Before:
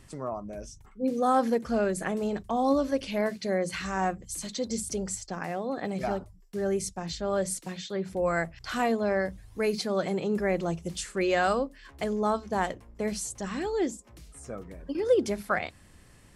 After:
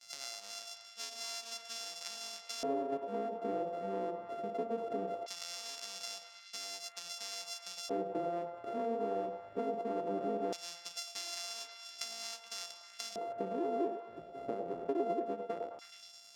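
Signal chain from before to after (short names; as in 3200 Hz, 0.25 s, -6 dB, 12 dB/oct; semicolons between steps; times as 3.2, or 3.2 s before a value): sample sorter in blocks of 64 samples; HPF 130 Hz 12 dB/oct; gate with hold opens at -45 dBFS; compressor 8:1, threshold -40 dBFS, peak gain reduction 22 dB; on a send: delay with a stepping band-pass 0.106 s, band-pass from 630 Hz, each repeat 0.7 oct, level -2.5 dB; on the sum: LFO band-pass square 0.19 Hz 390–5500 Hz; gain +13 dB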